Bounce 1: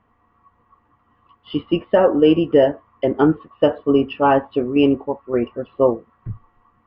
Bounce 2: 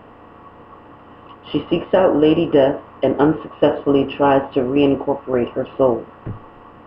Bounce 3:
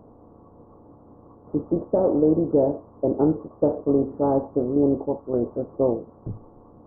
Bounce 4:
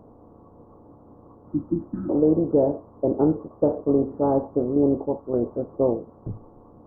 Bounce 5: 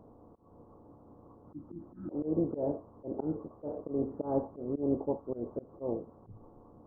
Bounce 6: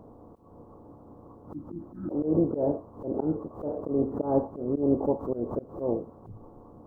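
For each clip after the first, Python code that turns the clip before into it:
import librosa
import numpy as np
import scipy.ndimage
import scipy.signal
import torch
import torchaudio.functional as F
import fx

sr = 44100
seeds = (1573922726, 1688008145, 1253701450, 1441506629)

y1 = fx.bin_compress(x, sr, power=0.6)
y1 = F.gain(torch.from_numpy(y1), -2.0).numpy()
y2 = scipy.ndimage.gaussian_filter1d(y1, 11.0, mode='constant')
y2 = F.gain(torch.from_numpy(y2), -3.5).numpy()
y3 = fx.spec_repair(y2, sr, seeds[0], start_s=1.49, length_s=0.58, low_hz=360.0, high_hz=1200.0, source='before')
y4 = fx.auto_swell(y3, sr, attack_ms=173.0)
y4 = F.gain(torch.from_numpy(y4), -6.5).numpy()
y5 = fx.pre_swell(y4, sr, db_per_s=130.0)
y5 = F.gain(torch.from_numpy(y5), 6.0).numpy()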